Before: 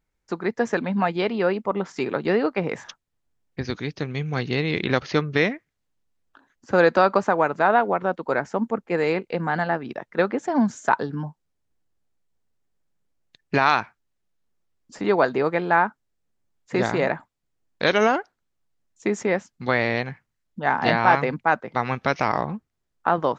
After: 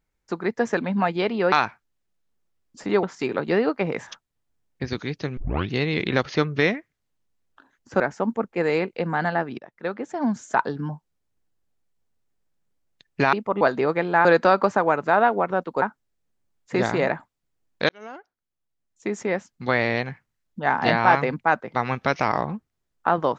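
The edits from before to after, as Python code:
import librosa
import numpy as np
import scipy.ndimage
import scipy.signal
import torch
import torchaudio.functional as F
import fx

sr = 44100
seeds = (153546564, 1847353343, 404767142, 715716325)

y = fx.edit(x, sr, fx.swap(start_s=1.52, length_s=0.28, other_s=13.67, other_length_s=1.51),
    fx.tape_start(start_s=4.14, length_s=0.34),
    fx.move(start_s=6.77, length_s=1.57, to_s=15.82),
    fx.fade_in_from(start_s=9.92, length_s=1.21, floor_db=-12.5),
    fx.fade_in_span(start_s=17.89, length_s=1.87), tone=tone)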